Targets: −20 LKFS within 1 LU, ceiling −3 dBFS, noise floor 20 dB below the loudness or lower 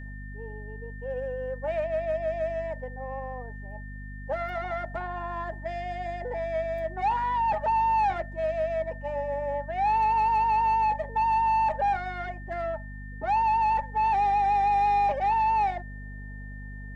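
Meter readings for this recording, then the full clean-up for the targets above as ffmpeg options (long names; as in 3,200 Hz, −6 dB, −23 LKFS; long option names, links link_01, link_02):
mains hum 50 Hz; hum harmonics up to 250 Hz; level of the hum −37 dBFS; interfering tone 1,800 Hz; level of the tone −46 dBFS; integrated loudness −27.0 LKFS; sample peak −17.5 dBFS; target loudness −20.0 LKFS
→ -af "bandreject=frequency=50:width_type=h:width=6,bandreject=frequency=100:width_type=h:width=6,bandreject=frequency=150:width_type=h:width=6,bandreject=frequency=200:width_type=h:width=6,bandreject=frequency=250:width_type=h:width=6"
-af "bandreject=frequency=1800:width=30"
-af "volume=7dB"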